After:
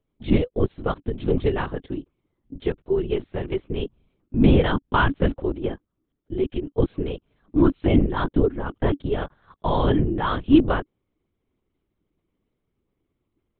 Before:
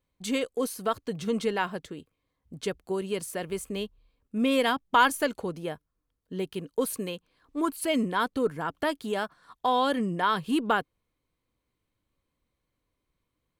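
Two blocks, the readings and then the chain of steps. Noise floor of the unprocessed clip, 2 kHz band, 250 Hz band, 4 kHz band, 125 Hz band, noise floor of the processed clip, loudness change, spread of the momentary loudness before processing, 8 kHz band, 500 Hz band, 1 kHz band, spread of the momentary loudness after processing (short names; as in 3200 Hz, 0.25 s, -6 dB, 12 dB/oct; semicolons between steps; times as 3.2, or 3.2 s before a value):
-82 dBFS, -0.5 dB, +8.0 dB, -2.0 dB, +16.5 dB, -78 dBFS, +5.5 dB, 13 LU, under -40 dB, +5.5 dB, -1.0 dB, 13 LU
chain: bell 300 Hz +14 dB 1.1 oct; LPC vocoder at 8 kHz whisper; gain -1 dB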